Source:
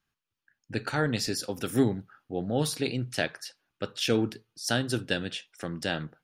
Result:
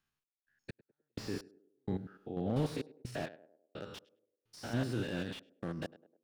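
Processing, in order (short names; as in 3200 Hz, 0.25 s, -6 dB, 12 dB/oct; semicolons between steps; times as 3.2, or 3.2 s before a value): stepped spectrum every 0.1 s; step gate "x.x..x..xxx" 64 bpm -60 dB; narrowing echo 0.102 s, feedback 50%, band-pass 430 Hz, level -17.5 dB; slew limiter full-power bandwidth 22 Hz; gain -2.5 dB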